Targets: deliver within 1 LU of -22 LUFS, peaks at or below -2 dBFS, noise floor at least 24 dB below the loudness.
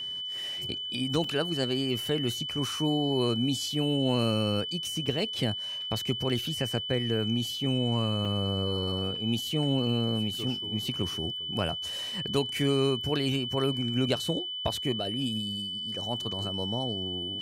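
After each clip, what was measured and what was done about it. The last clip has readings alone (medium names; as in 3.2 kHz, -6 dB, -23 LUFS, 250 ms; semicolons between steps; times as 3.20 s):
dropouts 3; longest dropout 3.4 ms; steady tone 3 kHz; tone level -33 dBFS; loudness -29.0 LUFS; peak level -13.5 dBFS; loudness target -22.0 LUFS
-> interpolate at 1.24/5.06/8.25 s, 3.4 ms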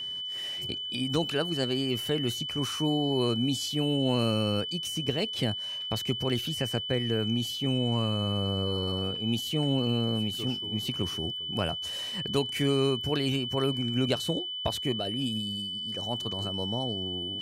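dropouts 0; steady tone 3 kHz; tone level -33 dBFS
-> band-stop 3 kHz, Q 30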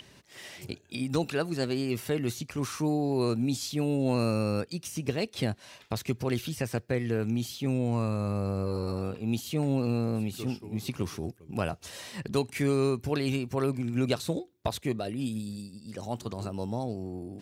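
steady tone not found; loudness -31.0 LUFS; peak level -13.5 dBFS; loudness target -22.0 LUFS
-> trim +9 dB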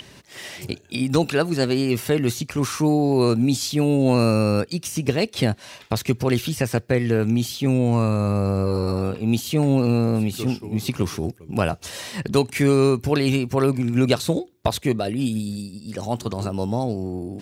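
loudness -22.0 LUFS; peak level -4.5 dBFS; noise floor -48 dBFS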